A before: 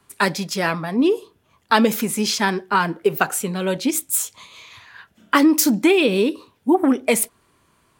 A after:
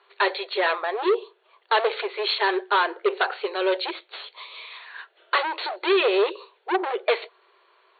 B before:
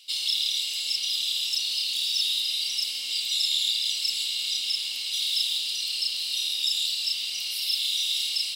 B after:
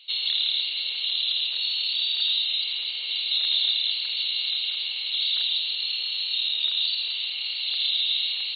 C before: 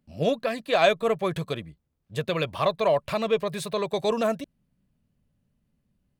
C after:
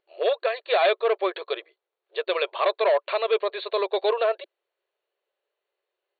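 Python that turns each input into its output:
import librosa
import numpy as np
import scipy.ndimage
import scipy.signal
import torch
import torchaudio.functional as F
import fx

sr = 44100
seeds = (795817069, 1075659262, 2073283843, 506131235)

y = np.clip(10.0 ** (19.0 / 20.0) * x, -1.0, 1.0) / 10.0 ** (19.0 / 20.0)
y = fx.brickwall_bandpass(y, sr, low_hz=350.0, high_hz=4500.0)
y = F.gain(torch.from_numpy(y), 3.0).numpy()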